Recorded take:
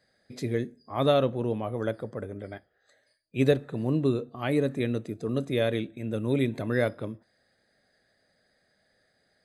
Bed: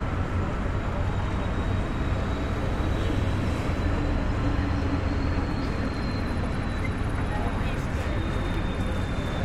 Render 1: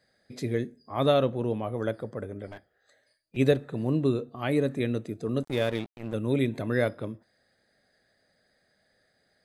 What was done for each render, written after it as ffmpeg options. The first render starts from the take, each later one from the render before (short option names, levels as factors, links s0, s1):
-filter_complex "[0:a]asettb=1/sr,asplit=3[s0][s1][s2];[s0]atrim=end=2.474[s3];[s1]atrim=start=2.47:end=3.37,asetpts=PTS-STARTPTS,afade=t=in:d=0.004:c=qsin,afade=t=out:st=0.896:d=0.004:c=qsin,aeval=exprs='clip(val(0),-1,0.00668)':c=same[s4];[s2]atrim=start=3.366[s5];[s3][s4]acrossfade=d=0.004:c1=hsin:c2=qsin[s6];[s6][s5]acrossfade=d=0.004:c1=qsin:c2=hsin,asettb=1/sr,asplit=3[s7][s8][s9];[s7]atrim=end=5.434[s10];[s8]atrim=start=5.43:end=6.14,asetpts=PTS-STARTPTS,afade=t=in:d=0.004:c=qsin,afade=t=out:st=0.706:d=0.004:c=qsin,aeval=exprs='sgn(val(0))*max(abs(val(0))-0.0119,0)':c=same[s11];[s9]atrim=start=6.136[s12];[s10][s11]acrossfade=d=0.004:c1=hsin:c2=qsin[s13];[s13][s12]acrossfade=d=0.004:c1=qsin:c2=hsin"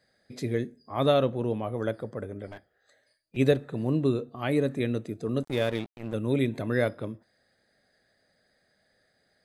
-af anull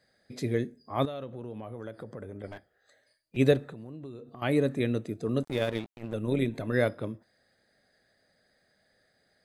-filter_complex "[0:a]asettb=1/sr,asplit=3[s0][s1][s2];[s0]atrim=end=1.054[s3];[s1]atrim=start=1.05:end=2.44,asetpts=PTS-STARTPTS,afade=t=in:d=0.004:c=qsin,afade=t=out:st=1.386:d=0.004:c=qsin,acompressor=threshold=0.0141:ratio=4:attack=3.2:release=140:knee=1:detection=peak[s4];[s2]atrim=start=2.436[s5];[s3][s4]acrossfade=d=0.004:c1=hsin:c2=qsin[s6];[s6][s5]acrossfade=d=0.004:c1=qsin:c2=hsin,asettb=1/sr,asplit=3[s7][s8][s9];[s7]atrim=end=3.724[s10];[s8]atrim=start=3.72:end=4.42,asetpts=PTS-STARTPTS,afade=t=in:d=0.004:c=qsin,afade=t=out:st=0.696:d=0.004:c=qsin,acompressor=threshold=0.00891:ratio=5:attack=3.2:release=140:knee=1:detection=peak[s11];[s9]atrim=start=4.416[s12];[s10][s11]acrossfade=d=0.004:c1=hsin:c2=qsin[s13];[s13][s12]acrossfade=d=0.004:c1=qsin:c2=hsin,asettb=1/sr,asplit=3[s14][s15][s16];[s14]atrim=end=5.504[s17];[s15]atrim=start=5.5:end=6.74,asetpts=PTS-STARTPTS,afade=t=in:d=0.004:c=qsin,afade=t=out:st=1.236:d=0.004:c=qsin,tremolo=f=100:d=0.462[s18];[s16]atrim=start=6.736[s19];[s17][s18]acrossfade=d=0.004:c1=hsin:c2=qsin[s20];[s20][s19]acrossfade=d=0.004:c1=qsin:c2=hsin"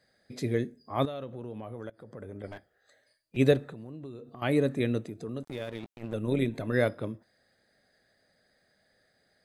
-filter_complex "[0:a]asettb=1/sr,asplit=3[s0][s1][s2];[s0]atrim=end=5.084[s3];[s1]atrim=start=5.08:end=5.83,asetpts=PTS-STARTPTS,afade=t=in:d=0.004:c=qsin,afade=t=out:st=0.746:d=0.004:c=qsin,acompressor=threshold=0.0126:ratio=2:attack=3.2:release=140:knee=1:detection=peak[s4];[s2]atrim=start=5.826[s5];[s3][s4]acrossfade=d=0.004:c1=hsin:c2=qsin[s6];[s6][s5]acrossfade=d=0.004:c1=qsin:c2=hsin,asplit=2[s7][s8];[s7]atrim=end=1.9,asetpts=PTS-STARTPTS,afade=t=out:st=1.896:d=0.004:c=hsin:silence=0.0944061[s9];[s8]atrim=start=1.9,asetpts=PTS-STARTPTS,afade=t=in:d=0.51:c=qsin:silence=0.0944061[s10];[s9][s10]concat=n=2:v=0:a=1"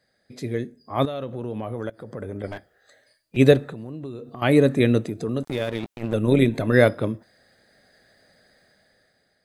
-af "dynaudnorm=f=320:g=7:m=4.22"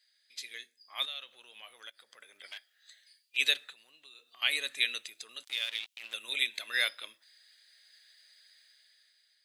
-af "highpass=f=3000:t=q:w=2"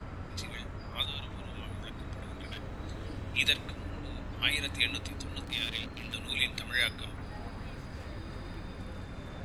-filter_complex "[1:a]volume=0.188[s0];[0:a][s0]amix=inputs=2:normalize=0"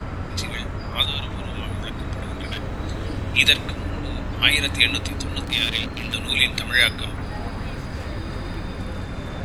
-af "volume=3.98,alimiter=limit=0.891:level=0:latency=1"